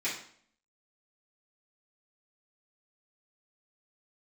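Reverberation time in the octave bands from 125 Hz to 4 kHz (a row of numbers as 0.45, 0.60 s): 0.60, 0.70, 0.60, 0.55, 0.50, 0.50 s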